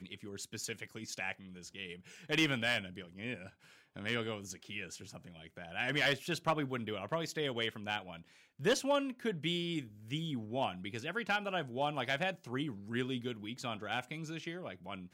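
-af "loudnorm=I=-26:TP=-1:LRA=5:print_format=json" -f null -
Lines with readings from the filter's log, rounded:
"input_i" : "-37.5",
"input_tp" : "-17.5",
"input_lra" : "4.1",
"input_thresh" : "-47.8",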